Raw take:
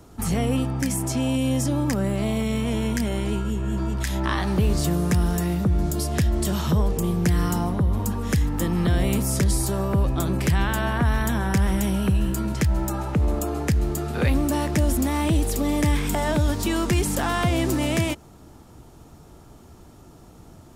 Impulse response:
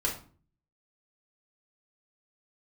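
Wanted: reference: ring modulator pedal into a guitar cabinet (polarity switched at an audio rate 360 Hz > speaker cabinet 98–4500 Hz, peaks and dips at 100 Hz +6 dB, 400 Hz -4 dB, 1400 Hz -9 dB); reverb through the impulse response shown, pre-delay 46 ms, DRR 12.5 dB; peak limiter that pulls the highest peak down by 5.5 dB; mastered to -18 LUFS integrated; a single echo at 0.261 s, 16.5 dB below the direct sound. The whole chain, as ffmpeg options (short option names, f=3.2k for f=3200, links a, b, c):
-filter_complex "[0:a]alimiter=limit=-16dB:level=0:latency=1,aecho=1:1:261:0.15,asplit=2[a][b];[1:a]atrim=start_sample=2205,adelay=46[c];[b][c]afir=irnorm=-1:irlink=0,volume=-19.5dB[d];[a][d]amix=inputs=2:normalize=0,aeval=exprs='val(0)*sgn(sin(2*PI*360*n/s))':c=same,highpass=98,equalizer=f=100:t=q:w=4:g=6,equalizer=f=400:t=q:w=4:g=-4,equalizer=f=1.4k:t=q:w=4:g=-9,lowpass=f=4.5k:w=0.5412,lowpass=f=4.5k:w=1.3066,volume=7dB"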